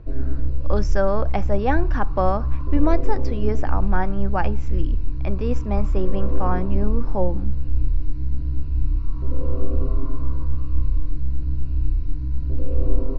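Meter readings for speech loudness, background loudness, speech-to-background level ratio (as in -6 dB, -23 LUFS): -26.5 LUFS, -27.0 LUFS, 0.5 dB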